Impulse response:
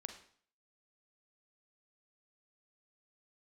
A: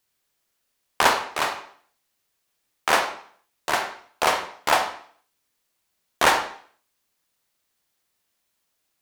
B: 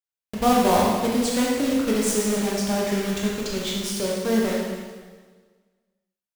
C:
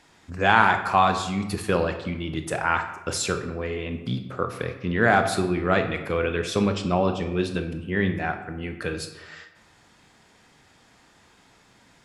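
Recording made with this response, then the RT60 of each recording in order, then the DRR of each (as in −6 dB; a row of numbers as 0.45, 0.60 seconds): A; 0.50, 1.5, 1.0 seconds; 6.0, −3.5, 6.5 decibels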